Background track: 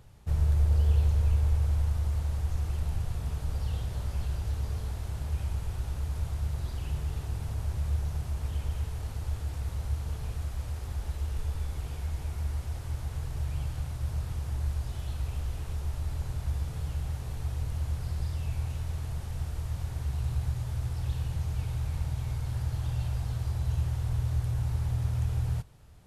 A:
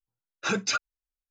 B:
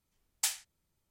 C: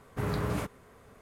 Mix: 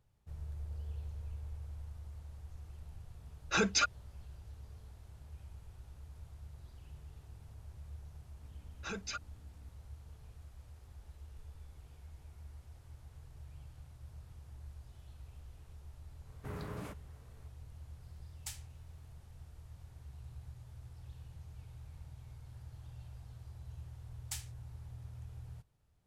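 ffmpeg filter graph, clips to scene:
-filter_complex "[1:a]asplit=2[a][b];[2:a]asplit=2[c][d];[0:a]volume=-19dB[e];[b]aeval=exprs='val(0)+0.00562*(sin(2*PI*60*n/s)+sin(2*PI*2*60*n/s)/2+sin(2*PI*3*60*n/s)/3+sin(2*PI*4*60*n/s)/4+sin(2*PI*5*60*n/s)/5)':c=same[f];[c]acompressor=mode=upward:threshold=-52dB:ratio=2.5:attack=3.2:release=140:knee=2.83:detection=peak[g];[a]atrim=end=1.3,asetpts=PTS-STARTPTS,volume=-2.5dB,afade=t=in:d=0.004:c=hsin,afade=t=out:st=1.296:d=0.004:c=hsin,adelay=3080[h];[f]atrim=end=1.3,asetpts=PTS-STARTPTS,volume=-14.5dB,afade=t=in:d=0.004:c=hsin,afade=t=out:st=1.296:d=0.004:c=hsin,adelay=8400[i];[3:a]atrim=end=1.21,asetpts=PTS-STARTPTS,volume=-12dB,afade=t=in:d=0.004:c=hsin,afade=t=out:st=1.206:d=0.004:c=hsin,adelay=16270[j];[g]atrim=end=1.1,asetpts=PTS-STARTPTS,volume=-14dB,afade=t=in:d=0.004:c=hsin,afade=t=out:st=1.096:d=0.004:c=hsin,adelay=18030[k];[d]atrim=end=1.1,asetpts=PTS-STARTPTS,volume=-11.5dB,afade=t=in:d=0.004:c=hsin,afade=t=out:st=1.096:d=0.004:c=hsin,adelay=23880[l];[e][h][i][j][k][l]amix=inputs=6:normalize=0"

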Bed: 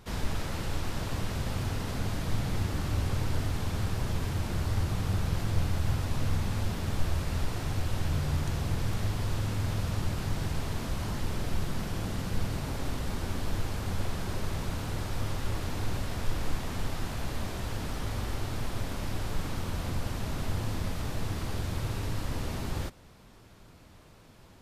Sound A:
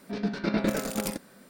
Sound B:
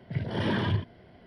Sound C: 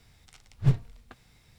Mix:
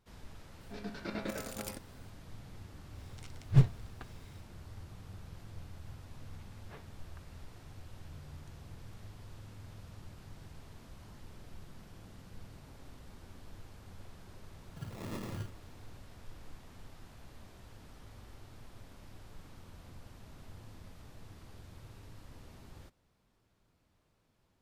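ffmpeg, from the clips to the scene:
-filter_complex "[3:a]asplit=2[a][b];[0:a]volume=-19.5dB[c];[1:a]lowshelf=f=270:g=-8.5[d];[b]highpass=690,lowpass=2.3k[e];[2:a]acrusher=samples=29:mix=1:aa=0.000001[f];[d]atrim=end=1.49,asetpts=PTS-STARTPTS,volume=-9dB,afade=t=in:d=0.004:c=hsin,afade=t=out:st=1.486:d=0.004:c=hsin,adelay=610[g];[a]atrim=end=1.58,asetpts=PTS-STARTPTS,volume=-0.5dB,afade=t=in:d=0.1,afade=t=out:st=1.48:d=0.1,adelay=2900[h];[e]atrim=end=1.58,asetpts=PTS-STARTPTS,volume=-8.5dB,afade=t=in:d=0.004:c=hsin,afade=t=out:st=1.576:d=0.004:c=hsin,adelay=6060[i];[f]atrim=end=1.26,asetpts=PTS-STARTPTS,volume=-13.5dB,afade=t=in:d=0.004:c=hsin,afade=t=out:st=1.256:d=0.004:c=hsin,adelay=14660[j];[c][g][h][i][j]amix=inputs=5:normalize=0"

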